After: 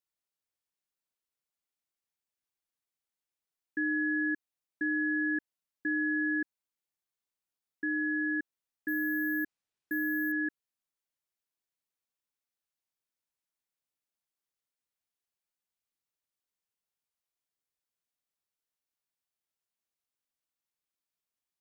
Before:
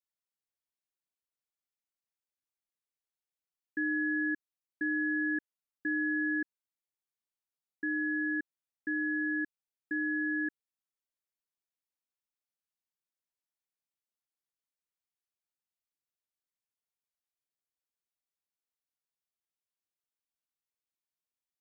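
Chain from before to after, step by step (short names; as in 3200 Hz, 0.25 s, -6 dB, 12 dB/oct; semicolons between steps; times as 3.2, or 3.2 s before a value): 8.88–10.32 careless resampling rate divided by 3×, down none, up hold; gain +1 dB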